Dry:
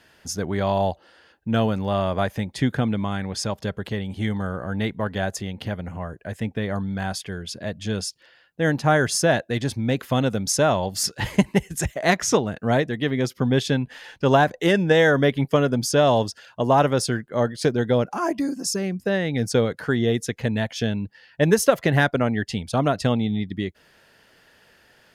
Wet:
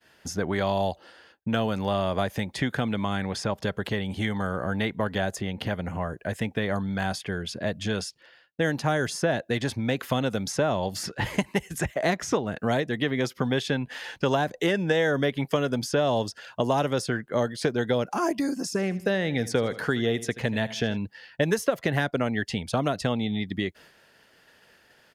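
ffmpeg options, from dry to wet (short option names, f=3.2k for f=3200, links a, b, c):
-filter_complex "[0:a]asplit=3[a][b][c];[a]afade=t=out:st=18.72:d=0.02[d];[b]aecho=1:1:78|156|234:0.126|0.0428|0.0146,afade=t=in:st=18.72:d=0.02,afade=t=out:st=20.96:d=0.02[e];[c]afade=t=in:st=20.96:d=0.02[f];[d][e][f]amix=inputs=3:normalize=0,acrossover=split=570|2800[g][h][i];[g]acompressor=threshold=-29dB:ratio=4[j];[h]acompressor=threshold=-33dB:ratio=4[k];[i]acompressor=threshold=-42dB:ratio=4[l];[j][k][l]amix=inputs=3:normalize=0,agate=range=-33dB:threshold=-50dB:ratio=3:detection=peak,lowshelf=f=100:g=-6,volume=4dB"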